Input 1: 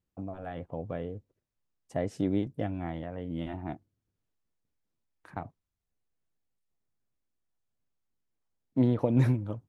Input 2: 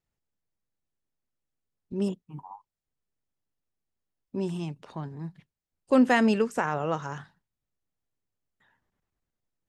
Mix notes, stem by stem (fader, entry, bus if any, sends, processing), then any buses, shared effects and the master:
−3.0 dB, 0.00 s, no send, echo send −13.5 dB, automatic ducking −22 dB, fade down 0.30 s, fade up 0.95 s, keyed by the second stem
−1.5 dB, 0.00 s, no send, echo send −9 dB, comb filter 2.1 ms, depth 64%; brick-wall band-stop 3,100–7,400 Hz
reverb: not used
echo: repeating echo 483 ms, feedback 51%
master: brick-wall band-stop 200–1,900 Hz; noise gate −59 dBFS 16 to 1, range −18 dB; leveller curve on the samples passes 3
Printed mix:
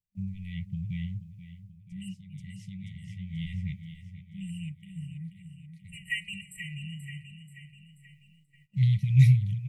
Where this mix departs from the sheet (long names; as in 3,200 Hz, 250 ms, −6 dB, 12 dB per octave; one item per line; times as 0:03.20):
stem 1 −3.0 dB → +7.5 dB
master: missing leveller curve on the samples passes 3